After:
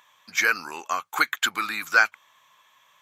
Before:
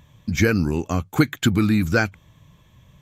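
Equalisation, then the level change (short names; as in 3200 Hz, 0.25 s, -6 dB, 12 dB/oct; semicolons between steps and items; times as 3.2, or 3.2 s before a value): resonant high-pass 1100 Hz, resonance Q 1.8; +1.0 dB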